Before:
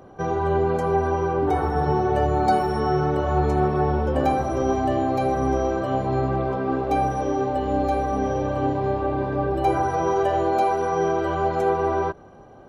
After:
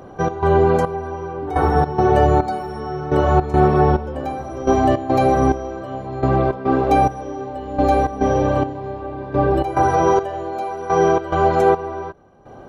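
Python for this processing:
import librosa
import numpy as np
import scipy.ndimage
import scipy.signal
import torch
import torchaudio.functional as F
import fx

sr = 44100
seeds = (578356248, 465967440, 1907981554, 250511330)

y = fx.step_gate(x, sr, bpm=106, pattern='xx.xxx.....', floor_db=-12.0, edge_ms=4.5)
y = y * librosa.db_to_amplitude(7.0)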